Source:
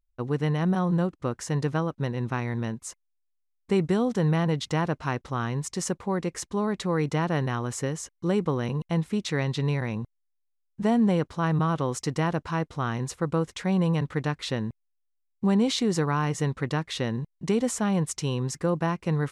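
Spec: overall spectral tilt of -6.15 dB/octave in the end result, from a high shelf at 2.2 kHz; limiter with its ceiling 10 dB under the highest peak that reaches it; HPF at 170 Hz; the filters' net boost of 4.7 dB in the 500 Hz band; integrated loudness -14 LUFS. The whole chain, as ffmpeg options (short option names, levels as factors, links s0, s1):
-af "highpass=170,equalizer=f=500:t=o:g=6,highshelf=f=2200:g=-4.5,volume=7.08,alimiter=limit=0.75:level=0:latency=1"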